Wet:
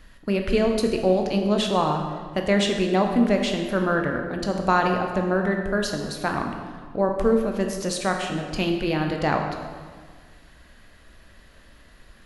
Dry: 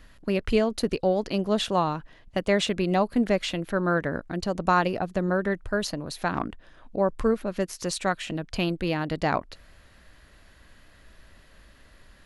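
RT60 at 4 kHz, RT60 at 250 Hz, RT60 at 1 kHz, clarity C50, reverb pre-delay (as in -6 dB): 1.2 s, 1.9 s, 1.6 s, 5.0 dB, 12 ms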